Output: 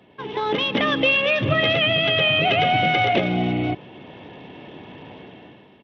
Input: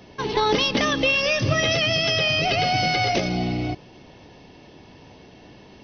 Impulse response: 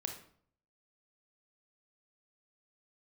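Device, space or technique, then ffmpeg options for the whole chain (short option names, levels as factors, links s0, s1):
Bluetooth headset: -af "highpass=120,dynaudnorm=f=110:g=11:m=4.47,aresample=8000,aresample=44100,volume=0.531" -ar 32000 -c:a sbc -b:a 64k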